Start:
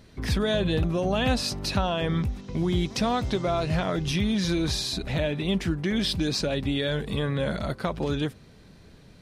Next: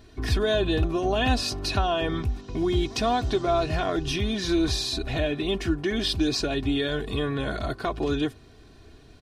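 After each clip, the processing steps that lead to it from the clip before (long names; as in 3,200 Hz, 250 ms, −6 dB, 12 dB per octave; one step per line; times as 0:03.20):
parametric band 12,000 Hz −4 dB 1.3 octaves
notch filter 2,100 Hz, Q 15
comb filter 2.8 ms, depth 70%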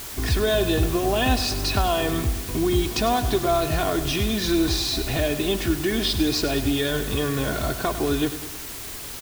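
in parallel at −1 dB: downward compressor, threshold −32 dBFS, peak gain reduction 14 dB
on the sum: bit-depth reduction 6 bits, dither triangular
repeating echo 101 ms, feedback 56%, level −12.5 dB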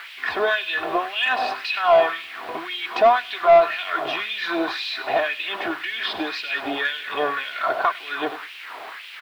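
auto-filter high-pass sine 1.9 Hz 680–2,800 Hz
high-frequency loss of the air 470 metres
soft clipping −14.5 dBFS, distortion −16 dB
level +8 dB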